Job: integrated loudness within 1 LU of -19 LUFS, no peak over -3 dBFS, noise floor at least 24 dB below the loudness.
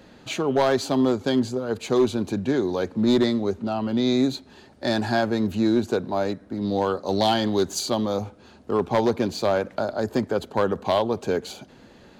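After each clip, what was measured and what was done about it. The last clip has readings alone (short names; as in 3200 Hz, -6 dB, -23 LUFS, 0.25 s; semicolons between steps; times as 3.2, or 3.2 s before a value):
clipped 0.7%; flat tops at -13.0 dBFS; loudness -24.0 LUFS; peak -13.0 dBFS; loudness target -19.0 LUFS
-> clip repair -13 dBFS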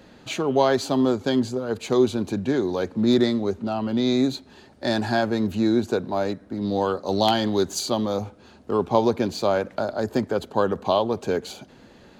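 clipped 0.0%; loudness -23.5 LUFS; peak -4.0 dBFS; loudness target -19.0 LUFS
-> gain +4.5 dB; limiter -3 dBFS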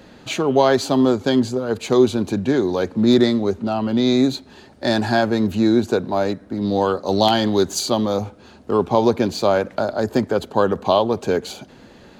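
loudness -19.0 LUFS; peak -3.0 dBFS; noise floor -46 dBFS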